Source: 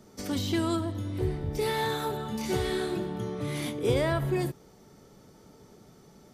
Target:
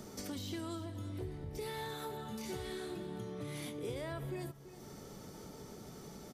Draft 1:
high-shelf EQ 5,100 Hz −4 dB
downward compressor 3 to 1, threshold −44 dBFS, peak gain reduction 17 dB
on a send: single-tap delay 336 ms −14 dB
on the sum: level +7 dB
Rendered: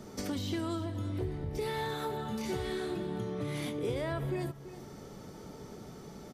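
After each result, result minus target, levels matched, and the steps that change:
downward compressor: peak gain reduction −7 dB; 8,000 Hz band −6.5 dB
change: downward compressor 3 to 1, threshold −54.5 dBFS, peak gain reduction 24 dB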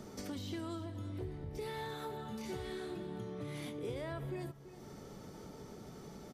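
8,000 Hz band −5.0 dB
change: high-shelf EQ 5,100 Hz +4 dB

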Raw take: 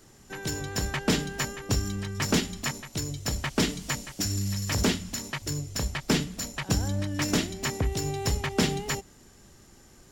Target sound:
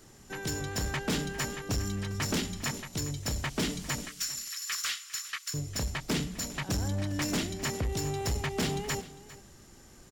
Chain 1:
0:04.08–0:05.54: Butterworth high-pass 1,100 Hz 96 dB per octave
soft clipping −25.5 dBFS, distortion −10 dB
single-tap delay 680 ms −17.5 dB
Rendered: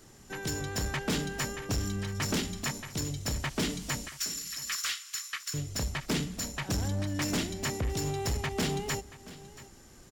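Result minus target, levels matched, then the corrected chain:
echo 278 ms late
0:04.08–0:05.54: Butterworth high-pass 1,100 Hz 96 dB per octave
soft clipping −25.5 dBFS, distortion −10 dB
single-tap delay 402 ms −17.5 dB

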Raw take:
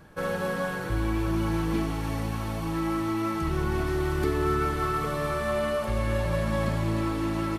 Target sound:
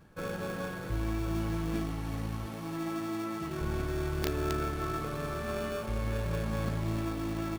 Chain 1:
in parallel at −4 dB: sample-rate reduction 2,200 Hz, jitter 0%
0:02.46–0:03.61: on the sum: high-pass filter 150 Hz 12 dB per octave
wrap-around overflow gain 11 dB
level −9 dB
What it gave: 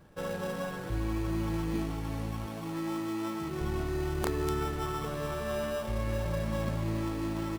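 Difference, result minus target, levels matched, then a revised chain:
sample-rate reduction: distortion −5 dB
in parallel at −4 dB: sample-rate reduction 1,000 Hz, jitter 0%
0:02.46–0:03.61: on the sum: high-pass filter 150 Hz 12 dB per octave
wrap-around overflow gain 11 dB
level −9 dB

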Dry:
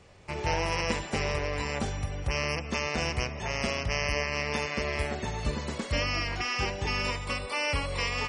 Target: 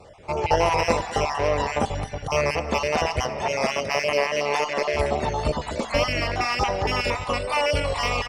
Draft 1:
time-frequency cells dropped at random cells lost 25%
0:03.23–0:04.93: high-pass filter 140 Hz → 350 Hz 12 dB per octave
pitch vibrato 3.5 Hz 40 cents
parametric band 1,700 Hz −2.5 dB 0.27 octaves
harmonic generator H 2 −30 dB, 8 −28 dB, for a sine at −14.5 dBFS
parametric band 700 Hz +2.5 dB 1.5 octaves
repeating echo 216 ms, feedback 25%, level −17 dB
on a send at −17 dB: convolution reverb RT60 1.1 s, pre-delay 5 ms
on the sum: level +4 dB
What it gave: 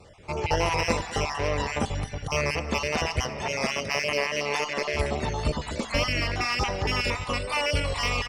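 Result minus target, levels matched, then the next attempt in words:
500 Hz band −2.5 dB
time-frequency cells dropped at random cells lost 25%
0:03.23–0:04.93: high-pass filter 140 Hz → 350 Hz 12 dB per octave
pitch vibrato 3.5 Hz 40 cents
parametric band 1,700 Hz −2.5 dB 0.27 octaves
harmonic generator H 2 −30 dB, 8 −28 dB, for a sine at −14.5 dBFS
parametric band 700 Hz +10 dB 1.5 octaves
repeating echo 216 ms, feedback 25%, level −17 dB
on a send at −17 dB: convolution reverb RT60 1.1 s, pre-delay 5 ms
on the sum: level +4 dB

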